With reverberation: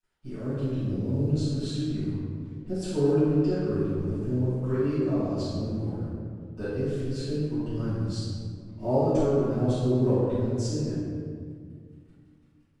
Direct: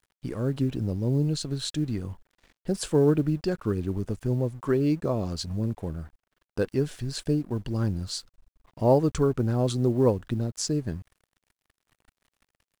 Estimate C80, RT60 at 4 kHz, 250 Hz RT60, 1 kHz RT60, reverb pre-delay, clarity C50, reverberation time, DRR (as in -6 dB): -1.0 dB, 1.1 s, 2.8 s, 1.8 s, 4 ms, -4.0 dB, 2.1 s, -17.0 dB